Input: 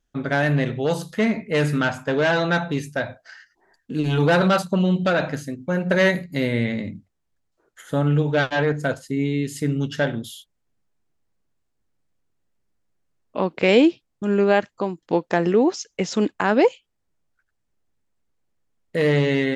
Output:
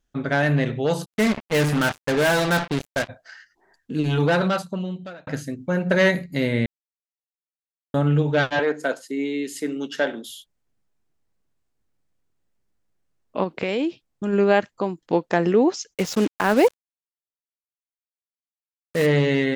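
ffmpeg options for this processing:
-filter_complex "[0:a]asplit=3[a][b][c];[a]afade=t=out:st=1.04:d=0.02[d];[b]acrusher=bits=3:mix=0:aa=0.5,afade=t=in:st=1.04:d=0.02,afade=t=out:st=3.08:d=0.02[e];[c]afade=t=in:st=3.08:d=0.02[f];[d][e][f]amix=inputs=3:normalize=0,asettb=1/sr,asplit=3[g][h][i];[g]atrim=end=8.594[j];[h]atrim=start=8.59:end=10.3,asetpts=PTS-STARTPTS,afade=t=in:d=0.004:c=qsin,afade=t=out:st=1.706:d=0.004:c=qsin,highpass=f=270:w=0.5412,highpass=f=270:w=1.3066[k];[i]atrim=start=10.296[l];[j][k]acrossfade=d=0.004:c1=hsin:c2=qsin[m];[m][l]acrossfade=d=0.004:c1=qsin:c2=hsin,asplit=3[n][o][p];[n]afade=t=out:st=13.43:d=0.02[q];[o]acompressor=threshold=-20dB:ratio=6:attack=3.2:release=140:knee=1:detection=peak,afade=t=in:st=13.43:d=0.02,afade=t=out:st=14.32:d=0.02[r];[p]afade=t=in:st=14.32:d=0.02[s];[q][r][s]amix=inputs=3:normalize=0,asplit=3[t][u][v];[t]afade=t=out:st=15.93:d=0.02[w];[u]acrusher=bits=4:mix=0:aa=0.5,afade=t=in:st=15.93:d=0.02,afade=t=out:st=19.05:d=0.02[x];[v]afade=t=in:st=19.05:d=0.02[y];[w][x][y]amix=inputs=3:normalize=0,asplit=4[z][aa][ab][ac];[z]atrim=end=5.27,asetpts=PTS-STARTPTS,afade=t=out:st=4.04:d=1.23[ad];[aa]atrim=start=5.27:end=6.66,asetpts=PTS-STARTPTS,afade=t=in:d=0.004:c=hsin,afade=t=out:st=1.386:d=0.004:c=hsin[ae];[ab]atrim=start=6.66:end=7.94,asetpts=PTS-STARTPTS,volume=0[af];[ac]atrim=start=7.94,asetpts=PTS-STARTPTS,afade=t=in:d=0.004:c=hsin[ag];[ad][ae][af][ag]concat=n=4:v=0:a=1"

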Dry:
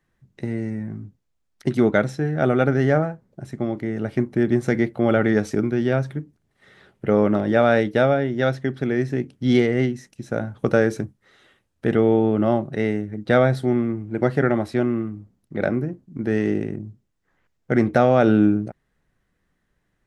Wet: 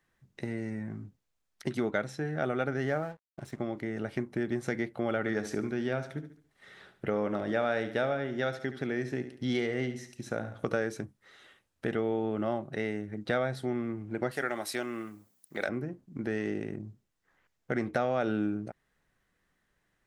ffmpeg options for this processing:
-filter_complex "[0:a]asettb=1/sr,asplit=3[a][b][c];[a]atrim=end=2.864[d];[b]atrim=start=2.86:end=3.58,asetpts=PTS-STARTPTS,afade=t=in:d=0.004:c=qsin,afade=t=out:st=0.716:d=0.004:c=qsin,aeval=exprs='sgn(val(0))*max(abs(val(0))-0.00447,0)':c=same[e];[c]atrim=start=3.576[f];[d][e]acrossfade=d=0.004:c1=hsin:c2=qsin[g];[g][f]acrossfade=d=0.004:c1=qsin:c2=hsin,asettb=1/sr,asplit=3[h][i][j];[h]atrim=end=5.194[k];[i]atrim=start=5.19:end=10.79,asetpts=PTS-STARTPTS,afade=t=in:d=0.004:c=qsin,afade=t=out:st=5.596:d=0.004:c=qsin,aecho=1:1:71|142|213|284:0.237|0.0854|0.0307|0.0111,atrim=end_sample=246960[l];[j]atrim=start=10.786[m];[k][l]acrossfade=d=0.004:c1=hsin:c2=qsin[n];[n][m]acrossfade=d=0.004:c1=qsin:c2=hsin,asettb=1/sr,asplit=3[o][p][q];[o]atrim=end=14.314[r];[p]atrim=start=14.31:end=15.69,asetpts=PTS-STARTPTS,afade=t=in:d=0.004:c=qsin,afade=t=out:st=1.376:d=0.004:c=qsin,aemphasis=mode=production:type=riaa[s];[q]atrim=start=15.686[t];[r][s]acrossfade=d=0.004:c1=hsin:c2=qsin[u];[u][t]acrossfade=d=0.004:c1=qsin:c2=hsin,lowshelf=f=450:g=-8,acompressor=threshold=-33dB:ratio=2"

